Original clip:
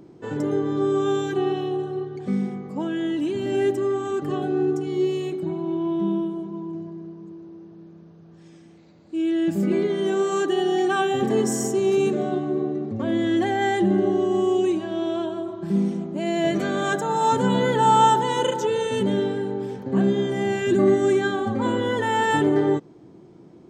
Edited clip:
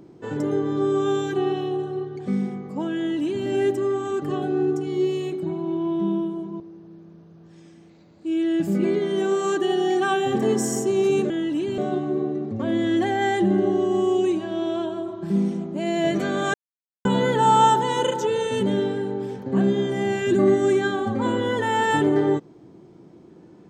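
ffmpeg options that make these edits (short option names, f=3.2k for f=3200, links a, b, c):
-filter_complex "[0:a]asplit=6[a][b][c][d][e][f];[a]atrim=end=6.602[g];[b]atrim=start=7.478:end=12.182[h];[c]atrim=start=2.968:end=3.452[i];[d]atrim=start=12.178:end=16.94,asetpts=PTS-STARTPTS,afade=t=out:st=4.758:d=0.004:c=hsin[j];[e]atrim=start=16.94:end=17.45,asetpts=PTS-STARTPTS,volume=0[k];[f]atrim=start=17.45,asetpts=PTS-STARTPTS,afade=t=in:d=0.004:c=hsin[l];[g][h]acrossfade=d=0.004:c1=hsin:c2=hsin[m];[m][i]acrossfade=d=0.004:c1=hsin:c2=hsin[n];[j][k][l]concat=n=3:v=0:a=1[o];[n][o]acrossfade=d=0.004:c1=hsin:c2=hsin"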